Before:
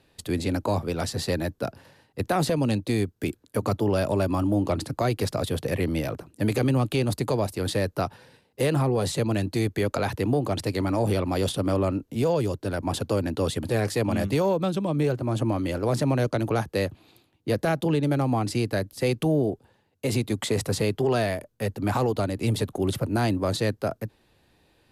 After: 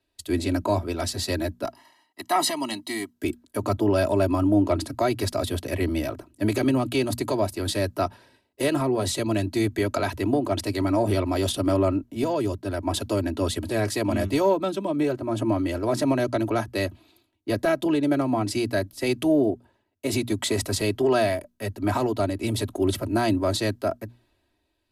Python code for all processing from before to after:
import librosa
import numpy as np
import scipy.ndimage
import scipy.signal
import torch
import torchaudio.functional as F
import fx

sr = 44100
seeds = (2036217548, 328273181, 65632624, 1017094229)

y = fx.chain(x, sr, fx.highpass(hz=400.0, slope=12),
    fx.comb(ms=1.0, depth=0.94), at=(1.65, 3.13))
y = fx.hum_notches(y, sr, base_hz=60, count=4)
y = y + 0.72 * np.pad(y, (int(3.1 * sr / 1000.0), 0))[:len(y)]
y = fx.band_widen(y, sr, depth_pct=40)